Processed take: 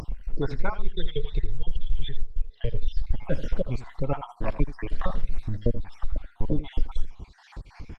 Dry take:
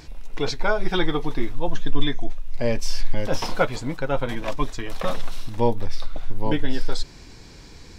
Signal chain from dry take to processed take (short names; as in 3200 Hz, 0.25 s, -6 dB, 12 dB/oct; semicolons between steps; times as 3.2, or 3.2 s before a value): random spectral dropouts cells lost 56%; compressor 3:1, threshold -24 dBFS, peak gain reduction 11.5 dB; tone controls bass +8 dB, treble -15 dB; 1.79–2.55 spectral repair 410–1500 Hz before; 0.76–3.02 EQ curve 130 Hz 0 dB, 200 Hz -10 dB, 300 Hz -19 dB, 430 Hz +3 dB, 790 Hz -21 dB, 1100 Hz -18 dB, 2300 Hz -2 dB, 3300 Hz +10 dB, 6900 Hz -16 dB, 10000 Hz -25 dB; echo 81 ms -14 dB; upward compressor, threshold -31 dBFS; Opus 24 kbps 48000 Hz